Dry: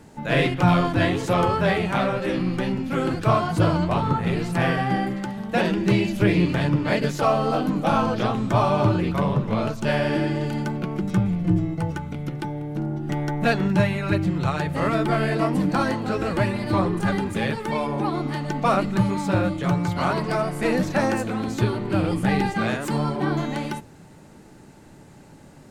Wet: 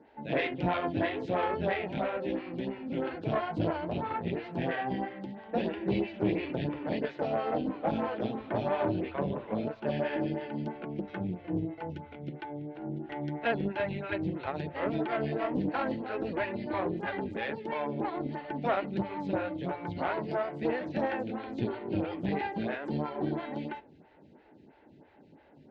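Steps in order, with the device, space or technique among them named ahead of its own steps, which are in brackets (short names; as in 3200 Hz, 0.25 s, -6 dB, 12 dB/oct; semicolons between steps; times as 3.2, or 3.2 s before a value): vibe pedal into a guitar amplifier (photocell phaser 3 Hz; tube stage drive 16 dB, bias 0.65; speaker cabinet 76–3500 Hz, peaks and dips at 120 Hz -9 dB, 180 Hz -6 dB, 1200 Hz -9 dB); gain -1.5 dB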